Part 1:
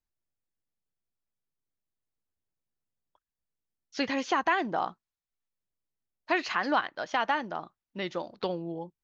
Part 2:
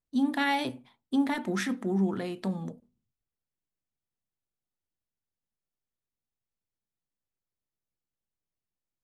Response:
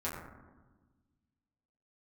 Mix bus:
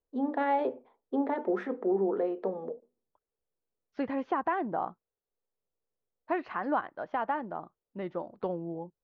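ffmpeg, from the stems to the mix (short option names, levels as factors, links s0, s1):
-filter_complex "[0:a]volume=0.891[s0];[1:a]highpass=f=450:t=q:w=4.6,volume=1[s1];[s0][s1]amix=inputs=2:normalize=0,lowpass=1100"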